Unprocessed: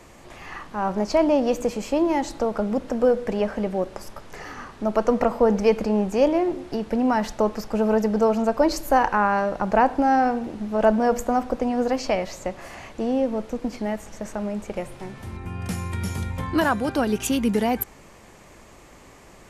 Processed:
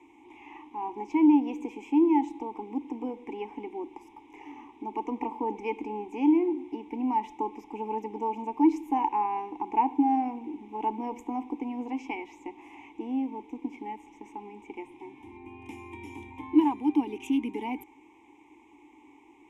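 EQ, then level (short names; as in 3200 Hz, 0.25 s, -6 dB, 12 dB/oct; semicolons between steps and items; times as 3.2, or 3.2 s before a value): vowel filter u; resonant high shelf 2900 Hz +7 dB, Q 1.5; fixed phaser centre 910 Hz, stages 8; +6.5 dB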